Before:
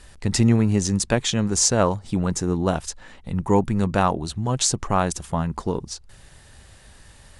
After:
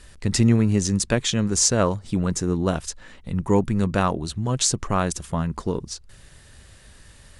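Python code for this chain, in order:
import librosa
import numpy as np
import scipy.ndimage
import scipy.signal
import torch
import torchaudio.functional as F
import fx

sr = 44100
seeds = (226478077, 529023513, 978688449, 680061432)

y = fx.peak_eq(x, sr, hz=810.0, db=-6.0, octaves=0.52)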